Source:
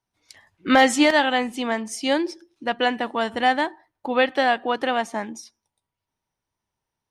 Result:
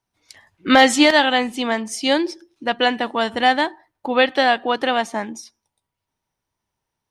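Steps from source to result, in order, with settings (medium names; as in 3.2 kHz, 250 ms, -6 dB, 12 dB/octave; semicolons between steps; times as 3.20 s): dynamic bell 3.9 kHz, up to +5 dB, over -40 dBFS, Q 1.6; trim +3 dB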